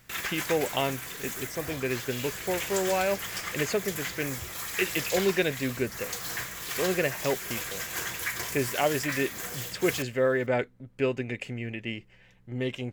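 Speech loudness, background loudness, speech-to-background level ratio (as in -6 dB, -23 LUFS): -30.5 LUFS, -33.5 LUFS, 3.0 dB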